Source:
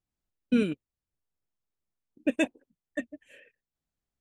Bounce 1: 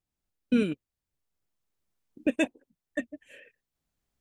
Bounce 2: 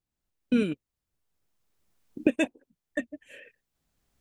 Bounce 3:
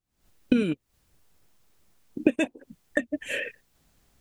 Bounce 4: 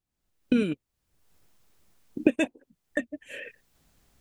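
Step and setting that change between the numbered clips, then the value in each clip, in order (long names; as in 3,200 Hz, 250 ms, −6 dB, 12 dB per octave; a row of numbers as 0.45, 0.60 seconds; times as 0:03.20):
camcorder AGC, rising by: 5, 12, 87, 34 dB per second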